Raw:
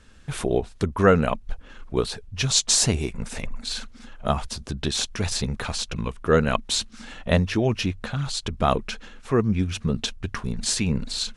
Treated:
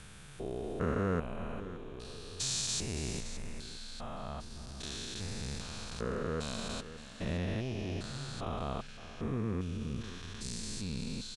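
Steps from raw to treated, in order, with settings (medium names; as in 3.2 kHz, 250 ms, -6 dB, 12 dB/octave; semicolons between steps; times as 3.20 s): spectrogram pixelated in time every 400 ms; delay 567 ms -13.5 dB; trim -8.5 dB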